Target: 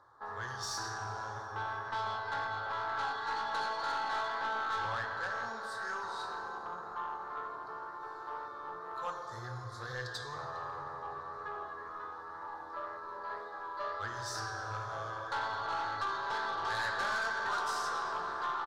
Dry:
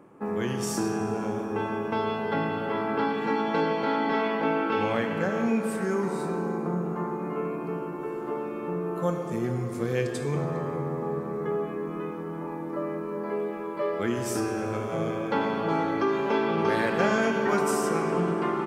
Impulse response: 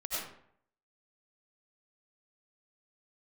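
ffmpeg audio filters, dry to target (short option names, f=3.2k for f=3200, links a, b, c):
-af "firequalizer=gain_entry='entry(110,0);entry(160,-28);entry(560,-7);entry(960,5);entry(1700,7);entry(2500,-27);entry(3800,14);entry(7900,-7);entry(13000,-13)':delay=0.05:min_phase=1,aeval=exprs='(tanh(15.8*val(0)+0.1)-tanh(0.1))/15.8':c=same,flanger=delay=7.5:depth=9:regen=-58:speed=2:shape=sinusoidal,volume=-1.5dB"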